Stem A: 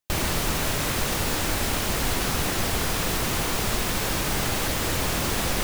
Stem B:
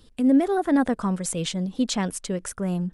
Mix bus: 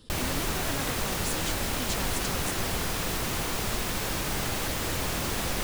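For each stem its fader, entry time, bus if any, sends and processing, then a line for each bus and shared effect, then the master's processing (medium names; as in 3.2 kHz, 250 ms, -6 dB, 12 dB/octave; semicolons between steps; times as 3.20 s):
-4.5 dB, 0.00 s, no send, none
-7.5 dB, 0.00 s, no send, spectrum-flattening compressor 2:1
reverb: none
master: none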